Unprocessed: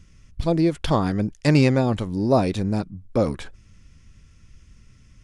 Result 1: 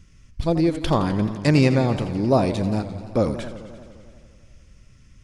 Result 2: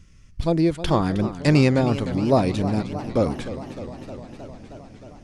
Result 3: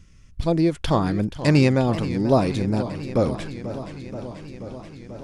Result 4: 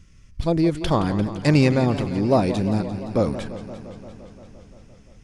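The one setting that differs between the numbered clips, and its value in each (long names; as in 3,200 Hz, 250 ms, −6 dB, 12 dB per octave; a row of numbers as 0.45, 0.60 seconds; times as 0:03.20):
feedback echo with a swinging delay time, delay time: 87, 309, 483, 173 milliseconds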